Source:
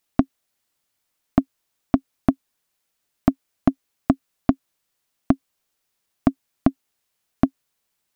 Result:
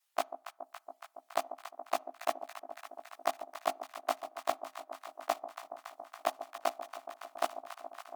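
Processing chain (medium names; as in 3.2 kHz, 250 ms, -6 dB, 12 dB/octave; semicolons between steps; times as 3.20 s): short-time spectra conjugated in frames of 38 ms; in parallel at -10.5 dB: bit crusher 4-bit; on the sum: reverb removal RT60 0.83 s; inverse Chebyshev high-pass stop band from 190 Hz, stop band 60 dB; echo whose repeats swap between lows and highs 140 ms, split 870 Hz, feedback 87%, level -10 dB; on a send at -22 dB: reverberation RT60 0.45 s, pre-delay 3 ms; on the sum: dynamic bell 1.6 kHz, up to -5 dB, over -49 dBFS, Q 1.6; trim +1 dB; AAC 96 kbps 48 kHz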